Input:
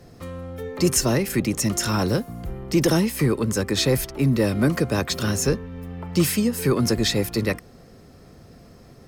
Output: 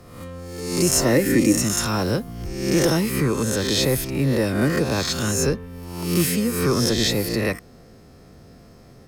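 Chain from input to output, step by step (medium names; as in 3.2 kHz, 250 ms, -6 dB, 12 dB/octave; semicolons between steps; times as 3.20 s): reverse spectral sustain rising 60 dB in 0.83 s; 1.04–1.57 s: small resonant body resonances 300/510/1800 Hz, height 9 dB -> 13 dB; trim -2 dB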